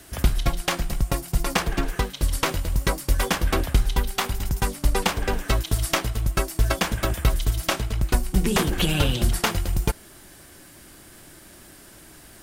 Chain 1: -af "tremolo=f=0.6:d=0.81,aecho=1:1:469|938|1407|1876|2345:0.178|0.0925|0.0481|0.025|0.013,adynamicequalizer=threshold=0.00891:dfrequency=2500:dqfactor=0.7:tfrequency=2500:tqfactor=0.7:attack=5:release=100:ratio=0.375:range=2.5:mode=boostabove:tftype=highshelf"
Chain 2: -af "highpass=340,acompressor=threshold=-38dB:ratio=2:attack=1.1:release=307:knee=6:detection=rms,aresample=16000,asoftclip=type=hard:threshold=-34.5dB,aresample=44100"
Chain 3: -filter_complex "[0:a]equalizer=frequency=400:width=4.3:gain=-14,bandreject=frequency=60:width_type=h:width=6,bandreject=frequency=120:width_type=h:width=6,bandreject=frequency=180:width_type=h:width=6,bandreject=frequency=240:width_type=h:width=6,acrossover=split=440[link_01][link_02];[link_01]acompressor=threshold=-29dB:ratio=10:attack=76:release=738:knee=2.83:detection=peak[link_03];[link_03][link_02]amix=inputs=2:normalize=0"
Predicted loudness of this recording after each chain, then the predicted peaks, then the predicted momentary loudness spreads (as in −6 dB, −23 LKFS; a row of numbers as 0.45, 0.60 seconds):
−27.0, −42.5, −28.0 LKFS; −5.0, −29.5, −5.5 dBFS; 14, 11, 20 LU